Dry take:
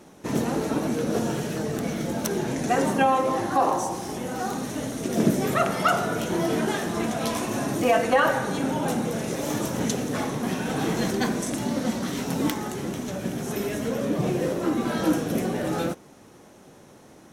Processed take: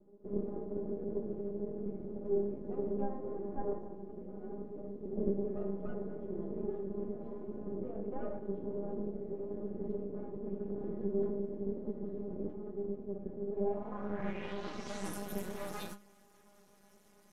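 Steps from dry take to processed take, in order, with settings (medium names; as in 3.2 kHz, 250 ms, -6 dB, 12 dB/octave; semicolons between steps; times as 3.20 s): inharmonic resonator 200 Hz, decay 0.23 s, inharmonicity 0.002; half-wave rectifier; low-pass sweep 410 Hz -> 13 kHz, 13.48–15.24 s; trim +1 dB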